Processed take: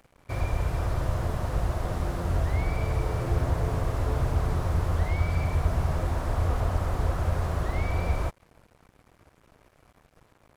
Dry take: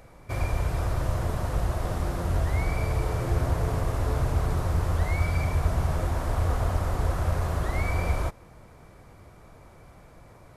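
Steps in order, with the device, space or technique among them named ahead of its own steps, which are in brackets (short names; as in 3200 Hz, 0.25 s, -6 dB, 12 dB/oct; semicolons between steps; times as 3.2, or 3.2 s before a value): early transistor amplifier (crossover distortion -49 dBFS; slew limiter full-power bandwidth 29 Hz)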